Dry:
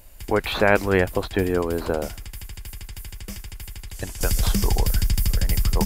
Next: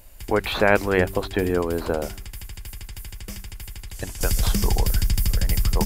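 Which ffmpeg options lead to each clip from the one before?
ffmpeg -i in.wav -af "bandreject=frequency=96.92:width_type=h:width=4,bandreject=frequency=193.84:width_type=h:width=4,bandreject=frequency=290.76:width_type=h:width=4,bandreject=frequency=387.68:width_type=h:width=4" out.wav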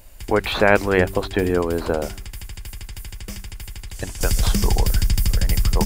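ffmpeg -i in.wav -af "equalizer=frequency=12000:width=5.5:gain=-12,volume=2.5dB" out.wav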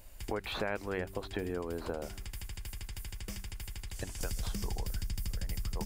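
ffmpeg -i in.wav -af "acompressor=threshold=-28dB:ratio=3,volume=-7.5dB" out.wav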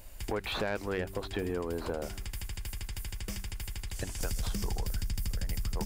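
ffmpeg -i in.wav -af "asoftclip=type=tanh:threshold=-27dB,volume=4dB" out.wav

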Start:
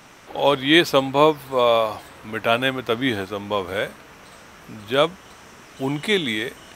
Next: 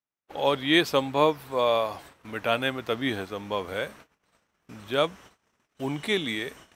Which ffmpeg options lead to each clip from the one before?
ffmpeg -i in.wav -af "agate=range=-44dB:threshold=-41dB:ratio=16:detection=peak,volume=-6dB" out.wav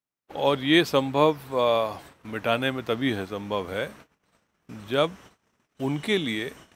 ffmpeg -i in.wav -af "equalizer=frequency=160:width_type=o:width=2.6:gain=4.5" out.wav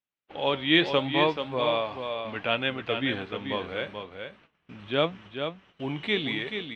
ffmpeg -i in.wav -af "lowpass=frequency=3000:width_type=q:width=2.3,flanger=delay=5.2:depth=7.8:regen=78:speed=0.77:shape=sinusoidal,aecho=1:1:433:0.447" out.wav

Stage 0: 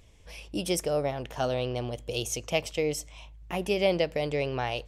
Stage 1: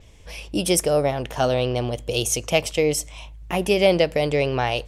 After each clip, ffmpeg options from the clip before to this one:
ffmpeg -i in.wav -af "adynamicequalizer=threshold=0.002:dfrequency=9900:dqfactor=1.9:tfrequency=9900:tqfactor=1.9:attack=5:release=100:ratio=0.375:range=3:mode=boostabove:tftype=bell,acontrast=81,volume=1dB" out.wav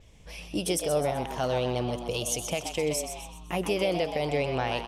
ffmpeg -i in.wav -filter_complex "[0:a]alimiter=limit=-12dB:level=0:latency=1:release=164,asplit=2[link_01][link_02];[link_02]asplit=5[link_03][link_04][link_05][link_06][link_07];[link_03]adelay=127,afreqshift=120,volume=-8dB[link_08];[link_04]adelay=254,afreqshift=240,volume=-14.9dB[link_09];[link_05]adelay=381,afreqshift=360,volume=-21.9dB[link_10];[link_06]adelay=508,afreqshift=480,volume=-28.8dB[link_11];[link_07]adelay=635,afreqshift=600,volume=-35.7dB[link_12];[link_08][link_09][link_10][link_11][link_12]amix=inputs=5:normalize=0[link_13];[link_01][link_13]amix=inputs=2:normalize=0,volume=-6dB" out.wav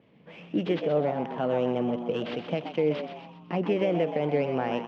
ffmpeg -i in.wav -filter_complex "[0:a]acrossover=split=2600[link_01][link_02];[link_02]aeval=exprs='abs(val(0))':channel_layout=same[link_03];[link_01][link_03]amix=inputs=2:normalize=0,highpass=frequency=140:width=0.5412,highpass=frequency=140:width=1.3066,equalizer=frequency=160:width_type=q:width=4:gain=6,equalizer=frequency=230:width_type=q:width=4:gain=7,equalizer=frequency=320:width_type=q:width=4:gain=4,equalizer=frequency=470:width_type=q:width=4:gain=4,equalizer=frequency=3100:width_type=q:width=4:gain=4,lowpass=frequency=3700:width=0.5412,lowpass=frequency=3700:width=1.3066,volume=-1dB" out.wav

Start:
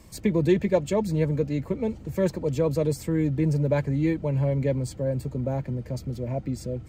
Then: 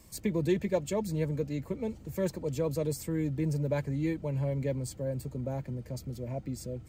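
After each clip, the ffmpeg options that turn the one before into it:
ffmpeg -i in.wav -af "highshelf=frequency=6200:gain=10,volume=-7dB" out.wav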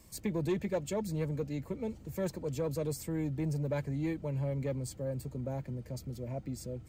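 ffmpeg -i in.wav -af "asoftclip=type=tanh:threshold=-22dB,volume=-2dB" out.wav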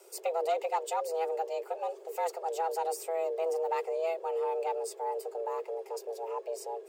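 ffmpeg -i in.wav -af "afreqshift=330,volume=2dB" out.wav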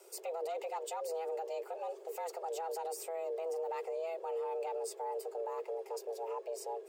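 ffmpeg -i in.wav -af "alimiter=level_in=5.5dB:limit=-24dB:level=0:latency=1:release=41,volume=-5.5dB,volume=-2dB" out.wav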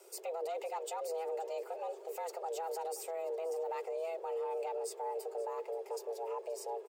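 ffmpeg -i in.wav -af "aecho=1:1:527|1054|1581|2108:0.112|0.0606|0.0327|0.0177" out.wav

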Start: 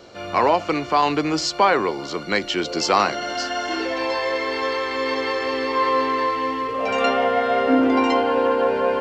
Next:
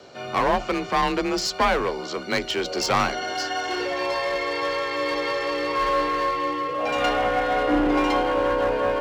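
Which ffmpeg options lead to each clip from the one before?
ffmpeg -i in.wav -af "aeval=exprs='clip(val(0),-1,0.1)':channel_layout=same,afreqshift=34,volume=-1.5dB" out.wav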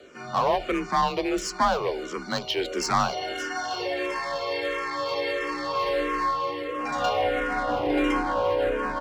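ffmpeg -i in.wav -filter_complex "[0:a]aecho=1:1:266|532|798:0.0794|0.0381|0.0183,asplit=2[link_01][link_02];[link_02]afreqshift=-1.5[link_03];[link_01][link_03]amix=inputs=2:normalize=1" out.wav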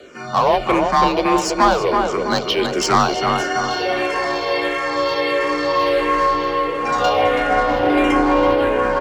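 ffmpeg -i in.wav -filter_complex "[0:a]asplit=2[link_01][link_02];[link_02]adelay=328,lowpass=frequency=2000:poles=1,volume=-3.5dB,asplit=2[link_03][link_04];[link_04]adelay=328,lowpass=frequency=2000:poles=1,volume=0.49,asplit=2[link_05][link_06];[link_06]adelay=328,lowpass=frequency=2000:poles=1,volume=0.49,asplit=2[link_07][link_08];[link_08]adelay=328,lowpass=frequency=2000:poles=1,volume=0.49,asplit=2[link_09][link_10];[link_10]adelay=328,lowpass=frequency=2000:poles=1,volume=0.49,asplit=2[link_11][link_12];[link_12]adelay=328,lowpass=frequency=2000:poles=1,volume=0.49[link_13];[link_01][link_03][link_05][link_07][link_09][link_11][link_13]amix=inputs=7:normalize=0,volume=7.5dB" out.wav

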